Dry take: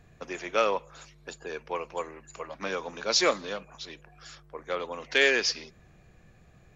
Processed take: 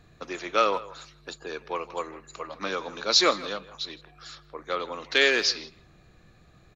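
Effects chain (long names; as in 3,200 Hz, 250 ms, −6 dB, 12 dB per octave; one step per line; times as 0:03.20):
thirty-one-band graphic EQ 315 Hz +5 dB, 1,250 Hz +6 dB, 4,000 Hz +11 dB
far-end echo of a speakerphone 160 ms, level −17 dB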